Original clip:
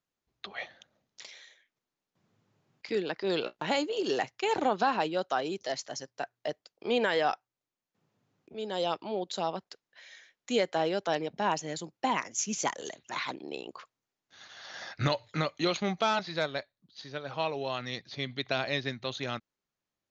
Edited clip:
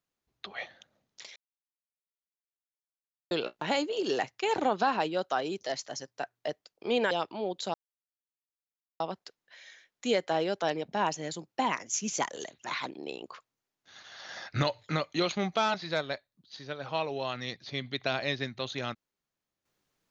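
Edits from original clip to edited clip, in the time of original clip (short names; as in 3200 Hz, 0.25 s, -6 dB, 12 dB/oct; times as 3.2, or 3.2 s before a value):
1.36–3.31 mute
7.11–8.82 cut
9.45 insert silence 1.26 s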